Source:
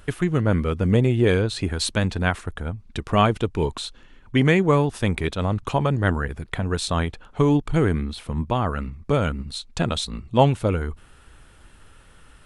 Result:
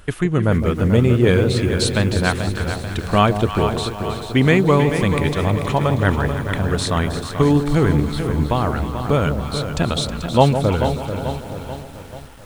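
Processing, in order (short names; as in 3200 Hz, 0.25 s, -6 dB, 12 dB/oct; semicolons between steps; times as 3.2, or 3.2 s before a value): echo with dull and thin repeats by turns 0.159 s, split 860 Hz, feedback 75%, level -8.5 dB; lo-fi delay 0.437 s, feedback 55%, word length 7-bit, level -8.5 dB; gain +3 dB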